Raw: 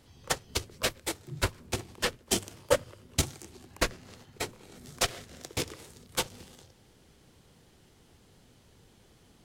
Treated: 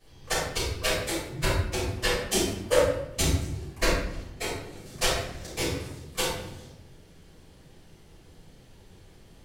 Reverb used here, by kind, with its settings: simulated room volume 200 m³, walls mixed, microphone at 5.9 m; trim -10.5 dB

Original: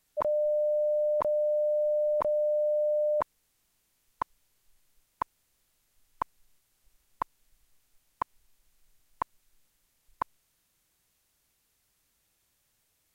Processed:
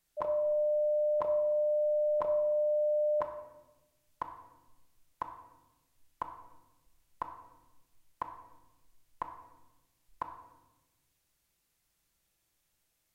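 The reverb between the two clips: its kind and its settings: simulated room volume 560 m³, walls mixed, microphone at 0.8 m; trim -5.5 dB

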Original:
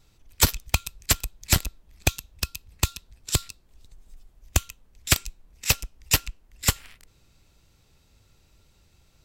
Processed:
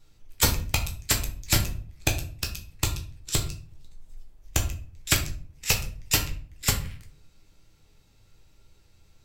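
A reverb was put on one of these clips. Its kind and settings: simulated room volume 39 m³, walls mixed, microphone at 0.52 m; trim -3.5 dB

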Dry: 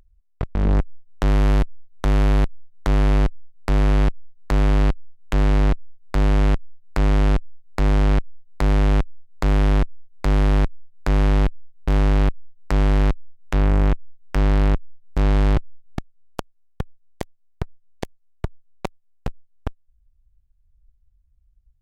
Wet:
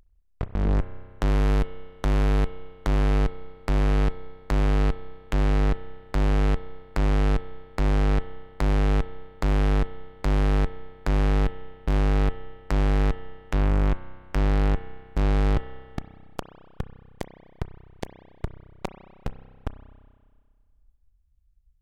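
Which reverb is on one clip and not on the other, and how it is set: spring tank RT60 1.8 s, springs 31 ms, chirp 60 ms, DRR 11 dB; trim -4 dB

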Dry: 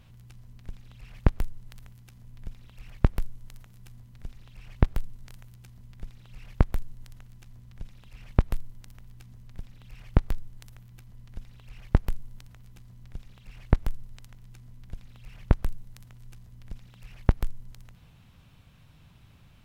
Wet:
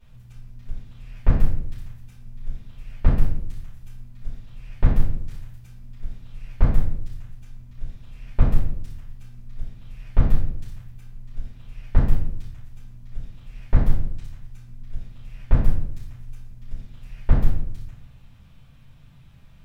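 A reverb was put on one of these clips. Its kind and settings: simulated room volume 140 m³, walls mixed, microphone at 4.6 m; trim -13 dB

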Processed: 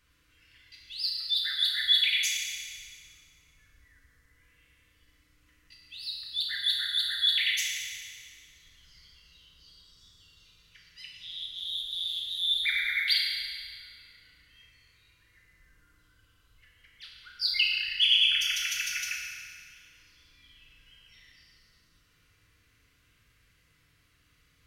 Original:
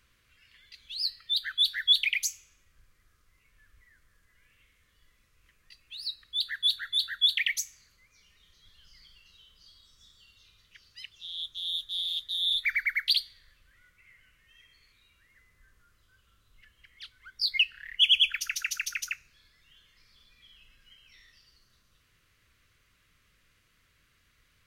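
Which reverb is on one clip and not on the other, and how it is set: FDN reverb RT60 2.1 s, low-frequency decay 1.55×, high-frequency decay 0.9×, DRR -3.5 dB; trim -4 dB

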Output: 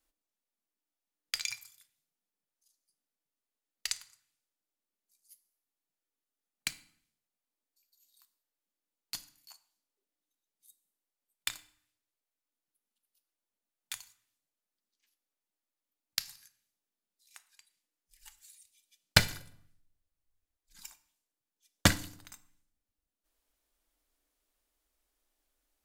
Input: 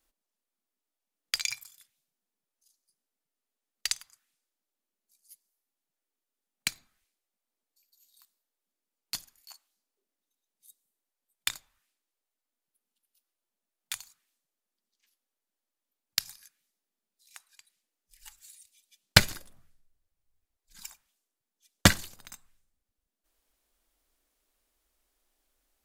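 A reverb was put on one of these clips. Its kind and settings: FDN reverb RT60 0.54 s, low-frequency decay 1.45×, high-frequency decay 0.95×, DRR 12.5 dB; trim -4.5 dB

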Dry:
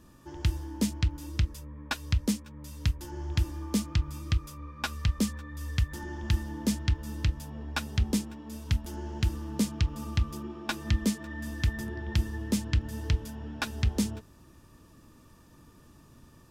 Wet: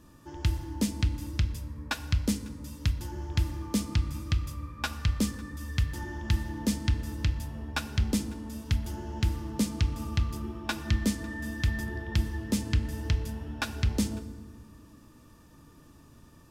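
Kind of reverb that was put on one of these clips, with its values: FDN reverb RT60 1.5 s, low-frequency decay 1.55×, high-frequency decay 0.65×, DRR 10.5 dB

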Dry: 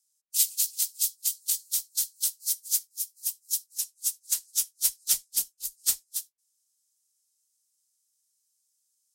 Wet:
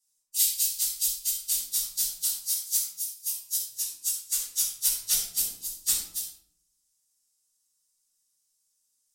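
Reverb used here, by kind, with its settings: simulated room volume 1000 m³, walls furnished, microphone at 9.8 m; trim -7.5 dB

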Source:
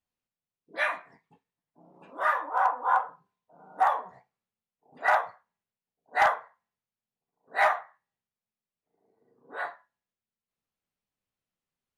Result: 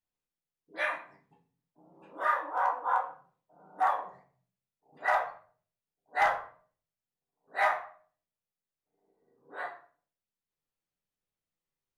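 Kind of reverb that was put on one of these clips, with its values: simulated room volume 38 m³, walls mixed, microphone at 0.44 m; trim -5.5 dB

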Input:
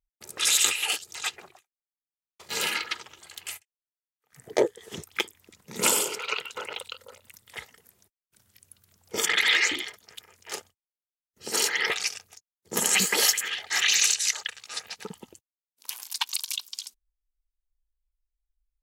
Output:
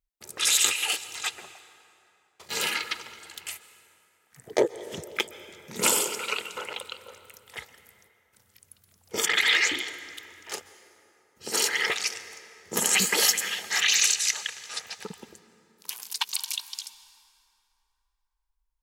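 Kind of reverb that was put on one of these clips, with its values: plate-style reverb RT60 3.1 s, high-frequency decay 0.6×, pre-delay 115 ms, DRR 14 dB

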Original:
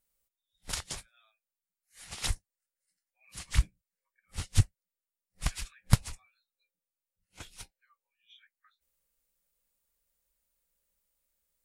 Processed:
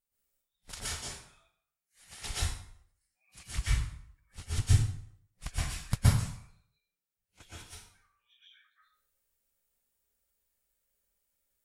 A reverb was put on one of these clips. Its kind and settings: plate-style reverb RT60 0.63 s, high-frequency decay 0.8×, pre-delay 110 ms, DRR -10 dB; trim -9.5 dB

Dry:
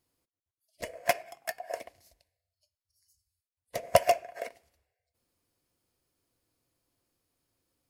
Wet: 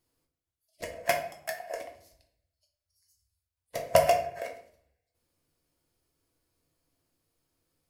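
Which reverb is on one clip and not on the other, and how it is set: simulated room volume 77 m³, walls mixed, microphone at 0.58 m; trim -1 dB

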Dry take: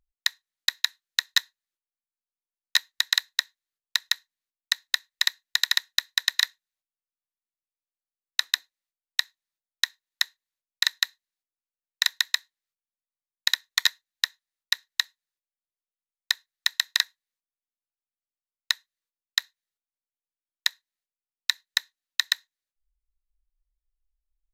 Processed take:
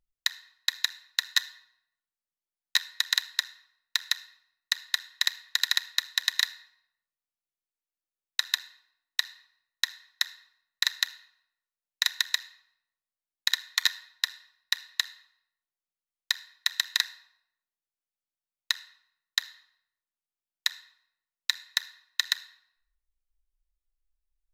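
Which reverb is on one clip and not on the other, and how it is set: simulated room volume 3100 m³, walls furnished, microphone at 0.88 m; trim -3 dB

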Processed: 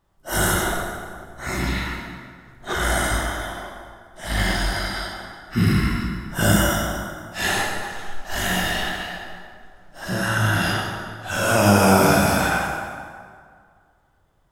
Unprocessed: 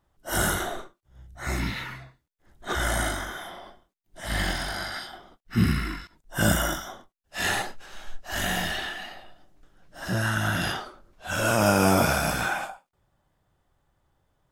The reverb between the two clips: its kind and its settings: plate-style reverb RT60 2 s, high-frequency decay 0.65×, DRR -1 dB; trim +2 dB

